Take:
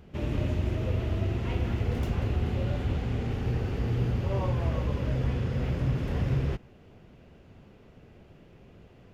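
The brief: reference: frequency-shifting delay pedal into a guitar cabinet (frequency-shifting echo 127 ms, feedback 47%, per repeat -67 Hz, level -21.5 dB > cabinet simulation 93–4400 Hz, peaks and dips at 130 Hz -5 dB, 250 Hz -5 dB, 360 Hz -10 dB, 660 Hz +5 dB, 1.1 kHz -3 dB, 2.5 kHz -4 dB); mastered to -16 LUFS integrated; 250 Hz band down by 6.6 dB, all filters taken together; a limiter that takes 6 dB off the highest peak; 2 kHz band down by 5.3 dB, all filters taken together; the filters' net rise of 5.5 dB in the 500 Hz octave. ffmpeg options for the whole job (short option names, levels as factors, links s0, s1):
-filter_complex "[0:a]equalizer=f=250:t=o:g=-5.5,equalizer=f=500:t=o:g=9,equalizer=f=2000:t=o:g=-5.5,alimiter=limit=0.0794:level=0:latency=1,asplit=4[s0][s1][s2][s3];[s1]adelay=127,afreqshift=-67,volume=0.0841[s4];[s2]adelay=254,afreqshift=-134,volume=0.0394[s5];[s3]adelay=381,afreqshift=-201,volume=0.0186[s6];[s0][s4][s5][s6]amix=inputs=4:normalize=0,highpass=93,equalizer=f=130:t=q:w=4:g=-5,equalizer=f=250:t=q:w=4:g=-5,equalizer=f=360:t=q:w=4:g=-10,equalizer=f=660:t=q:w=4:g=5,equalizer=f=1100:t=q:w=4:g=-3,equalizer=f=2500:t=q:w=4:g=-4,lowpass=f=4400:w=0.5412,lowpass=f=4400:w=1.3066,volume=8.41"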